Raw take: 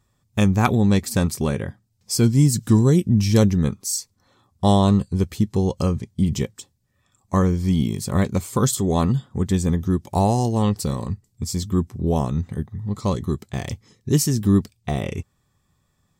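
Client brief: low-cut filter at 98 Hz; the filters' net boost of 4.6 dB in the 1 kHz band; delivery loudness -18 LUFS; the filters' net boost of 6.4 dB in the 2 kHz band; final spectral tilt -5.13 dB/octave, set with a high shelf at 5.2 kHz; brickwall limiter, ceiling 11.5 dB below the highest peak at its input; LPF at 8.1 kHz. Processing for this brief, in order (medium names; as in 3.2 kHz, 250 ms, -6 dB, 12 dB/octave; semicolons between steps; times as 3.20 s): high-pass 98 Hz; low-pass 8.1 kHz; peaking EQ 1 kHz +4.5 dB; peaking EQ 2 kHz +5.5 dB; treble shelf 5.2 kHz +8.5 dB; trim +4.5 dB; peak limiter -4 dBFS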